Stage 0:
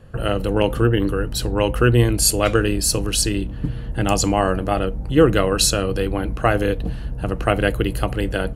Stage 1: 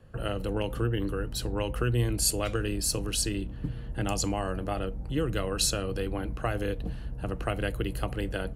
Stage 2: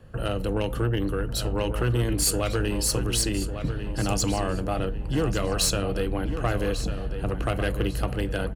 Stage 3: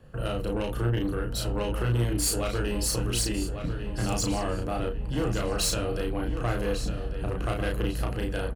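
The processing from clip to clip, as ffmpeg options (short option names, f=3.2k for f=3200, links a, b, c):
-filter_complex "[0:a]acrossover=split=140|3000[a][b][c];[b]acompressor=threshold=-18dB:ratio=6[d];[a][d][c]amix=inputs=3:normalize=0,volume=-9dB"
-filter_complex "[0:a]asoftclip=type=tanh:threshold=-21.5dB,asplit=2[a][b];[b]adelay=1148,lowpass=f=4.5k:p=1,volume=-9dB,asplit=2[c][d];[d]adelay=1148,lowpass=f=4.5k:p=1,volume=0.41,asplit=2[e][f];[f]adelay=1148,lowpass=f=4.5k:p=1,volume=0.41,asplit=2[g][h];[h]adelay=1148,lowpass=f=4.5k:p=1,volume=0.41,asplit=2[i][j];[j]adelay=1148,lowpass=f=4.5k:p=1,volume=0.41[k];[a][c][e][g][i][k]amix=inputs=6:normalize=0,volume=5dB"
-filter_complex "[0:a]asoftclip=type=tanh:threshold=-16.5dB,asplit=2[a][b];[b]adelay=34,volume=-3dB[c];[a][c]amix=inputs=2:normalize=0,volume=-3.5dB"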